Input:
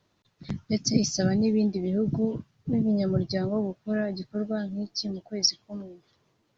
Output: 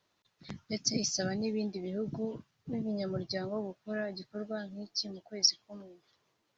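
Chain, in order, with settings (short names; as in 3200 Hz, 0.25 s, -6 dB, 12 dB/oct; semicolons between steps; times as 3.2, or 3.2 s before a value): low shelf 370 Hz -11.5 dB; gain -2.5 dB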